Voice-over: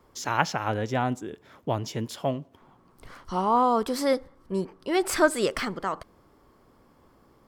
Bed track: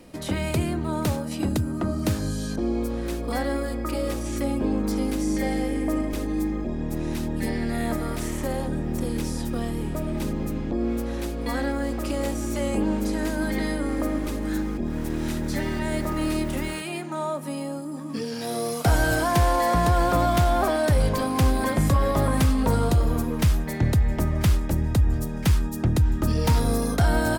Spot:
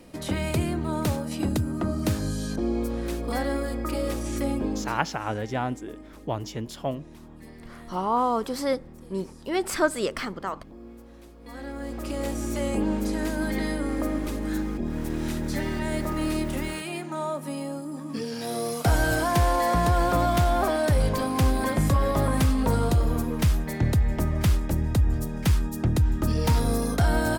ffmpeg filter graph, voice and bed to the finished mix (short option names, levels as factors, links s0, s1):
-filter_complex "[0:a]adelay=4600,volume=0.794[s0];[1:a]volume=6.68,afade=t=out:st=4.52:d=0.52:silence=0.125893,afade=t=in:st=11.41:d=1:silence=0.133352[s1];[s0][s1]amix=inputs=2:normalize=0"